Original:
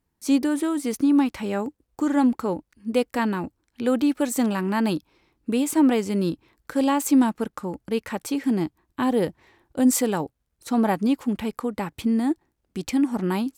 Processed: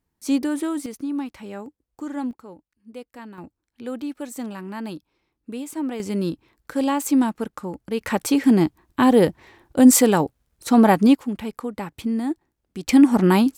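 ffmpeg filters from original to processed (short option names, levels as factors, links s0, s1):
-af "asetnsamples=n=441:p=0,asendcmd='0.86 volume volume -8.5dB;2.31 volume volume -16dB;3.38 volume volume -9dB;6 volume volume -0.5dB;8.01 volume volume 7dB;11.15 volume volume -2dB;12.89 volume volume 8.5dB',volume=0.891"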